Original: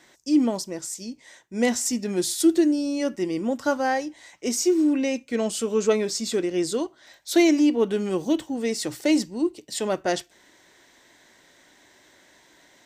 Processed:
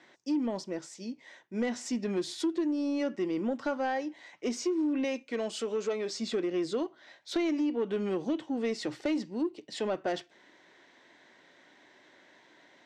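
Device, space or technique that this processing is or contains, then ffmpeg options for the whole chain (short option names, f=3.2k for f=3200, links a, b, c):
AM radio: -filter_complex "[0:a]highpass=160,lowpass=3.5k,acompressor=threshold=-23dB:ratio=6,asoftclip=type=tanh:threshold=-19.5dB,asettb=1/sr,asplit=3[a][b][c];[a]atrim=end=5.044[d];[b]atrim=start=5.04:end=6.15,asetpts=PTS-STARTPTS,afade=t=in:d=0.004:c=qsin,afade=t=out:st=1.106:d=0.004:c=qsin,bass=f=250:g=-8,treble=f=4k:g=4[e];[c]atrim=start=6.146[f];[d][e]acrossfade=d=0.004:c1=hsin:c2=qsin[g];[g][f]acrossfade=d=0.004:c1=qsin:c2=hsin,volume=-2dB"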